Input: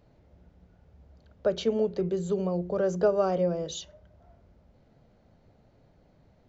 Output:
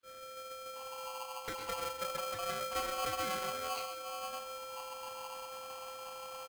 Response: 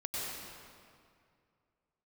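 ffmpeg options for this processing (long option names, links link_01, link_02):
-filter_complex "[0:a]areverse,acompressor=mode=upward:threshold=-46dB:ratio=2.5,areverse,alimiter=limit=-23.5dB:level=0:latency=1:release=276,aeval=exprs='(tanh(39.8*val(0)+0.8)-tanh(0.8))/39.8':channel_layout=same,aresample=8000,aresample=44100,acompressor=threshold=-49dB:ratio=6,aecho=1:1:0.9:0.6,aeval=exprs='val(0)+0.00282*sin(2*PI*410*n/s)':channel_layout=same,agate=range=-33dB:threshold=-42dB:ratio=3:detection=peak,highpass=48,acrossover=split=270|2200[link_01][link_02][link_03];[link_02]adelay=30[link_04];[link_01]adelay=730[link_05];[link_05][link_04][link_03]amix=inputs=3:normalize=0,asplit=2[link_06][link_07];[1:a]atrim=start_sample=2205,afade=type=out:start_time=0.23:duration=0.01,atrim=end_sample=10584[link_08];[link_07][link_08]afir=irnorm=-1:irlink=0,volume=-5.5dB[link_09];[link_06][link_09]amix=inputs=2:normalize=0,aeval=exprs='val(0)*sgn(sin(2*PI*930*n/s))':channel_layout=same,volume=16dB"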